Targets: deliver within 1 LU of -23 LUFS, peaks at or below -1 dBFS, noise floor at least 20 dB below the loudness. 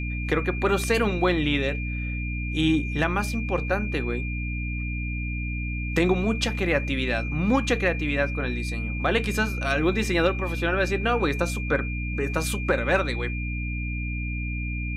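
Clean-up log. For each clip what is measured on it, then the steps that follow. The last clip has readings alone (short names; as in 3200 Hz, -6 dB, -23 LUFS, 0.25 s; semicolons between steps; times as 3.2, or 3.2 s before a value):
hum 60 Hz; harmonics up to 300 Hz; hum level -27 dBFS; steady tone 2400 Hz; tone level -34 dBFS; loudness -25.5 LUFS; peak -9.5 dBFS; loudness target -23.0 LUFS
-> notches 60/120/180/240/300 Hz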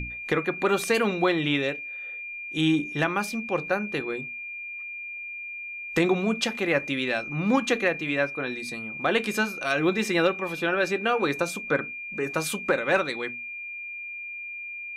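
hum none; steady tone 2400 Hz; tone level -34 dBFS
-> notch 2400 Hz, Q 30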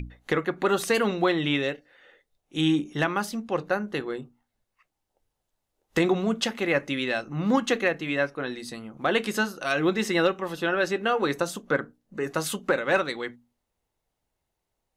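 steady tone none; loudness -26.5 LUFS; peak -11.0 dBFS; loudness target -23.0 LUFS
-> gain +3.5 dB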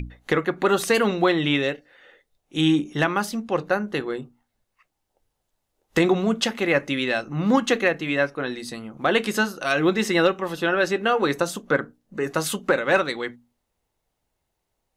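loudness -23.0 LUFS; peak -7.5 dBFS; noise floor -78 dBFS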